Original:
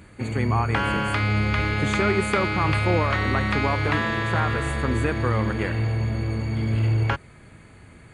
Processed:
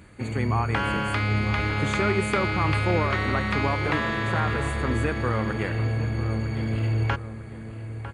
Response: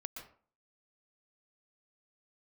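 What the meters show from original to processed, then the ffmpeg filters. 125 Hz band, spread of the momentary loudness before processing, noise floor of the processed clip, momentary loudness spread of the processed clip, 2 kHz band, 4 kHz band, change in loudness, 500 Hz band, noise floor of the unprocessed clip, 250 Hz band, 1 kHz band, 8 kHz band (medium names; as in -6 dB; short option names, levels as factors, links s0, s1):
-2.0 dB, 5 LU, -37 dBFS, 6 LU, -2.0 dB, -2.0 dB, -2.0 dB, -1.5 dB, -48 dBFS, -1.5 dB, -1.5 dB, -2.0 dB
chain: -filter_complex "[0:a]asplit=2[s0][s1];[s1]adelay=951,lowpass=f=1800:p=1,volume=0.282,asplit=2[s2][s3];[s3]adelay=951,lowpass=f=1800:p=1,volume=0.44,asplit=2[s4][s5];[s5]adelay=951,lowpass=f=1800:p=1,volume=0.44,asplit=2[s6][s7];[s7]adelay=951,lowpass=f=1800:p=1,volume=0.44,asplit=2[s8][s9];[s9]adelay=951,lowpass=f=1800:p=1,volume=0.44[s10];[s0][s2][s4][s6][s8][s10]amix=inputs=6:normalize=0,volume=0.794"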